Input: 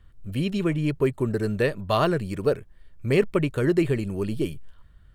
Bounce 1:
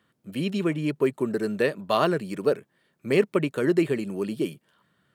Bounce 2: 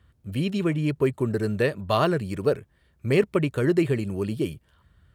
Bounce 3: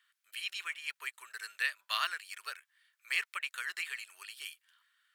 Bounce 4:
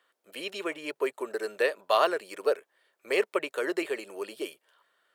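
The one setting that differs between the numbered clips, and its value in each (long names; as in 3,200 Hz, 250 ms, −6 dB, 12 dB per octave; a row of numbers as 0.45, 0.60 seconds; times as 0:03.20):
high-pass filter, corner frequency: 170, 60, 1,500, 460 Hertz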